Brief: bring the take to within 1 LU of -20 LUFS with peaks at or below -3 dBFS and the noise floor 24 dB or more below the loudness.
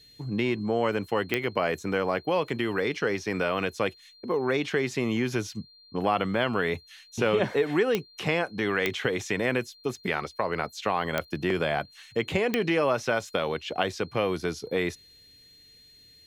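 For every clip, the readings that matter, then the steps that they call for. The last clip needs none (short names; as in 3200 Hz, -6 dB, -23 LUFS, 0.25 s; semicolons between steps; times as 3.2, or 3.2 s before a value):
clicks 5; steady tone 4200 Hz; tone level -53 dBFS; loudness -28.0 LUFS; peak -8.0 dBFS; loudness target -20.0 LUFS
-> de-click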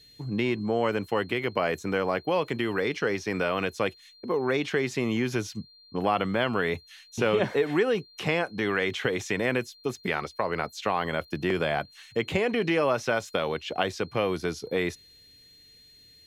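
clicks 0; steady tone 4200 Hz; tone level -53 dBFS
-> notch 4200 Hz, Q 30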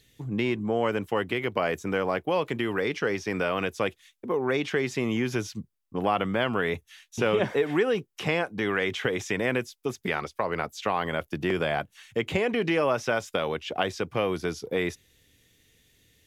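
steady tone none; loudness -28.0 LUFS; peak -8.5 dBFS; loudness target -20.0 LUFS
-> gain +8 dB; limiter -3 dBFS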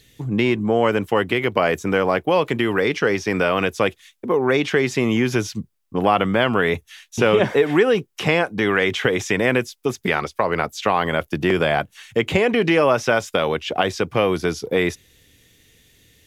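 loudness -20.0 LUFS; peak -3.0 dBFS; noise floor -63 dBFS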